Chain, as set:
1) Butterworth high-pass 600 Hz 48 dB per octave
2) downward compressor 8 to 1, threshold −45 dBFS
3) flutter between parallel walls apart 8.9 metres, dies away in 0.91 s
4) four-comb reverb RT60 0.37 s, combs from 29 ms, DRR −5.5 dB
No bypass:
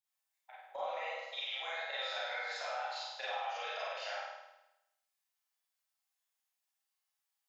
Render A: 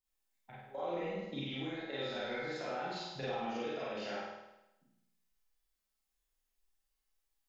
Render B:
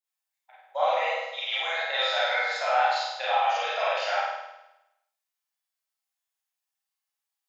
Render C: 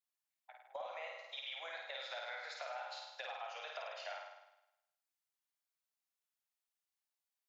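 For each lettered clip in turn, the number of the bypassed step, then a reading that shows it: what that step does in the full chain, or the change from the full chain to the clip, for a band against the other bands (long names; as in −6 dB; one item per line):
1, 500 Hz band +8.5 dB
2, average gain reduction 11.0 dB
4, echo-to-direct ratio 8.5 dB to −1.0 dB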